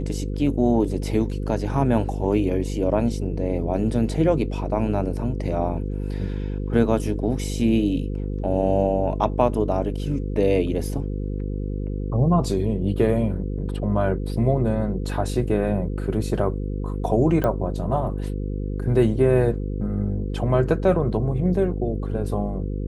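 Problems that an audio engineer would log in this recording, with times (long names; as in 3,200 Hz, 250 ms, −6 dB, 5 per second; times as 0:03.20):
mains buzz 50 Hz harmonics 10 −27 dBFS
0:17.44: click −12 dBFS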